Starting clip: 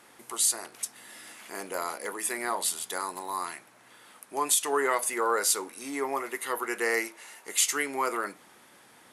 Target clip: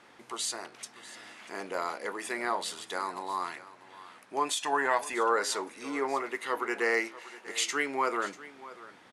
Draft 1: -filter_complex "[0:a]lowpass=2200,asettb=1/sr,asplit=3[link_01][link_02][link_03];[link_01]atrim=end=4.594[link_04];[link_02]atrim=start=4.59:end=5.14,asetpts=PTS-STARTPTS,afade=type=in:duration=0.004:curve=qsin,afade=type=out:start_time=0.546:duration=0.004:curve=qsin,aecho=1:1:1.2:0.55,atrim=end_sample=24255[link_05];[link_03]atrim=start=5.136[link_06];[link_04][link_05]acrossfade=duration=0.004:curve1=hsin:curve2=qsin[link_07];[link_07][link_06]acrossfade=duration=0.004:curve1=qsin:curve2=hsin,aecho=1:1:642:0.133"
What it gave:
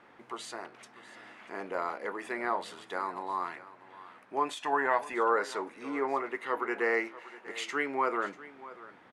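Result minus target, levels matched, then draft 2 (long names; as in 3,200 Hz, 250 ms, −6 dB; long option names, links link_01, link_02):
4,000 Hz band −7.0 dB
-filter_complex "[0:a]lowpass=4900,asettb=1/sr,asplit=3[link_01][link_02][link_03];[link_01]atrim=end=4.594[link_04];[link_02]atrim=start=4.59:end=5.14,asetpts=PTS-STARTPTS,afade=type=in:duration=0.004:curve=qsin,afade=type=out:start_time=0.546:duration=0.004:curve=qsin,aecho=1:1:1.2:0.55,atrim=end_sample=24255[link_05];[link_03]atrim=start=5.136[link_06];[link_04][link_05]acrossfade=duration=0.004:curve1=hsin:curve2=qsin[link_07];[link_07][link_06]acrossfade=duration=0.004:curve1=qsin:curve2=hsin,aecho=1:1:642:0.133"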